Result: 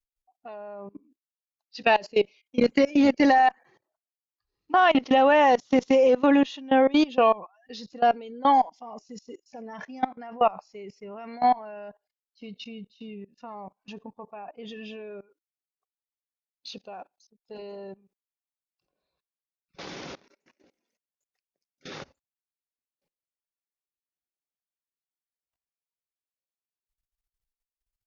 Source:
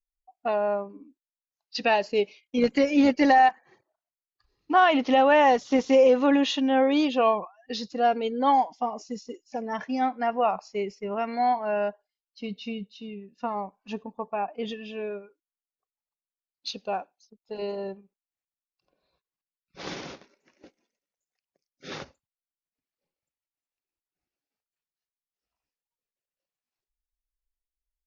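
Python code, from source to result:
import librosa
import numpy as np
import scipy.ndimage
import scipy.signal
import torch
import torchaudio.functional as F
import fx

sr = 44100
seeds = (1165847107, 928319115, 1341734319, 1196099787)

y = fx.level_steps(x, sr, step_db=22)
y = fx.cheby_harmonics(y, sr, harmonics=(4,), levels_db=(-39,), full_scale_db=-11.5)
y = F.gain(torch.from_numpy(y), 4.5).numpy()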